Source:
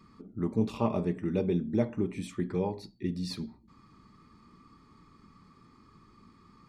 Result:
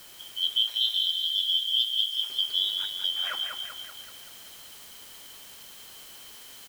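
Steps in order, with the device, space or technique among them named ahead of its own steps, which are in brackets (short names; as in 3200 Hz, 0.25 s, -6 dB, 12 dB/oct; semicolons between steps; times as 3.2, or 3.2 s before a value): split-band scrambled radio (four-band scrambler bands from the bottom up 3412; BPF 310–3100 Hz; white noise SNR 18 dB); 0.58–2.3 passive tone stack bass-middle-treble 10-0-10; feedback echo 0.192 s, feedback 57%, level -5 dB; gain +6 dB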